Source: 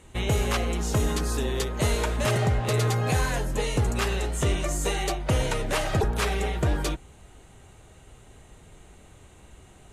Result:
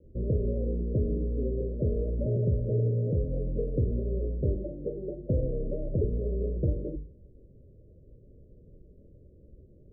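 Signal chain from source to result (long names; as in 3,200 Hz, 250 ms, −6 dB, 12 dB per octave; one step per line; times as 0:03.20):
Butterworth low-pass 580 Hz 96 dB per octave
mains-hum notches 50/100/150/200/250/300/350/400/450 Hz
level −1.5 dB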